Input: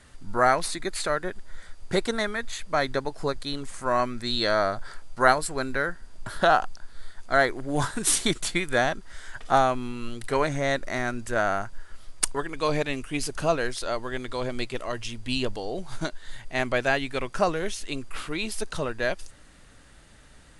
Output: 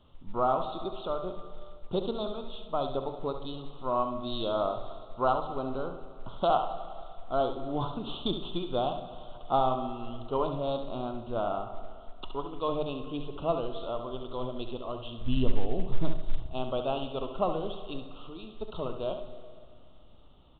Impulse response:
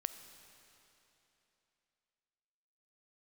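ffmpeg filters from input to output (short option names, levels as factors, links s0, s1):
-filter_complex "[0:a]asettb=1/sr,asplit=3[s0][s1][s2];[s0]atrim=end=15.214[s3];[s1]atrim=start=15.21:end=16.46,asetpts=PTS-STARTPTS,afade=t=in:d=0.004:c=qsin,afade=t=out:st=1.246:d=0.004:c=qsin,aemphasis=mode=reproduction:type=bsi[s4];[s2]atrim=start=16.456[s5];[s3][s4]acrossfade=d=0.004:c1=hsin:c2=qsin[s6];[s6][s5]acrossfade=d=0.004:c1=qsin:c2=hsin,bandreject=f=50:t=h:w=6,bandreject=f=100:t=h:w=6,bandreject=f=150:t=h:w=6,asettb=1/sr,asplit=3[s7][s8][s9];[s7]atrim=end=17.984[s10];[s8]atrim=start=17.98:end=18.61,asetpts=PTS-STARTPTS,afade=t=in:d=0.004:c=qsin,afade=t=out:st=0.626:d=0.004:c=qsin,acompressor=threshold=0.0251:ratio=20[s11];[s9]atrim=start=18.606[s12];[s10][s11]acrossfade=d=0.004:c1=hsin:c2=qsin[s13];[s13][s12]acrossfade=d=0.004:c1=qsin:c2=hsin,asuperstop=centerf=1900:order=8:qfactor=1.2,aecho=1:1:69|138:0.355|0.0568[s14];[1:a]atrim=start_sample=2205,asetrate=66150,aresample=44100[s15];[s14][s15]afir=irnorm=-1:irlink=0" -ar 8000 -c:a pcm_mulaw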